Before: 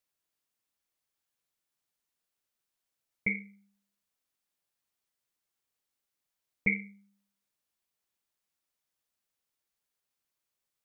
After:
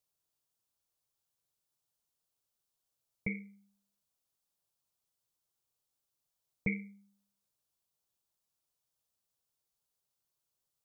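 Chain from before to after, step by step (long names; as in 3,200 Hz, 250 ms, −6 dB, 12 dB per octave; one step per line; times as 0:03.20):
graphic EQ with 10 bands 125 Hz +5 dB, 250 Hz −5 dB, 2,000 Hz −11 dB
level +1 dB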